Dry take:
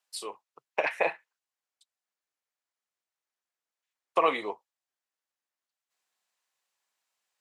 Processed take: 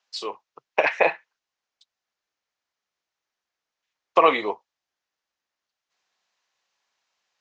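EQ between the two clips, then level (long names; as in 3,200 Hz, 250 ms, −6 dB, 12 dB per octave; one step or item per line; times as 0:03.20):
Butterworth low-pass 6,600 Hz 48 dB per octave
+7.5 dB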